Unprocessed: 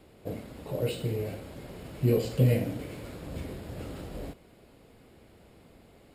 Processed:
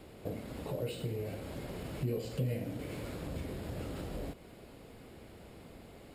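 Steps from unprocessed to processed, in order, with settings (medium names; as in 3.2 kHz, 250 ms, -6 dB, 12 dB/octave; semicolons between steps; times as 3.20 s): compression 2.5:1, threshold -42 dBFS, peak gain reduction 15.5 dB; trim +3.5 dB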